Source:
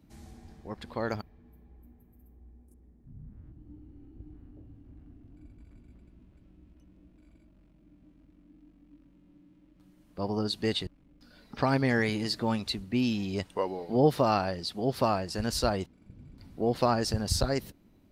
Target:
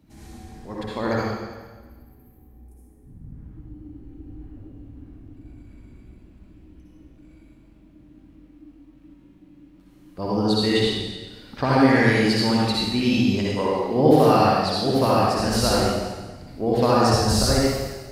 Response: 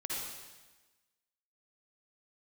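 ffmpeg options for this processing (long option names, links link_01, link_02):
-filter_complex "[1:a]atrim=start_sample=2205,asetrate=41454,aresample=44100[link_01];[0:a][link_01]afir=irnorm=-1:irlink=0,volume=6.5dB"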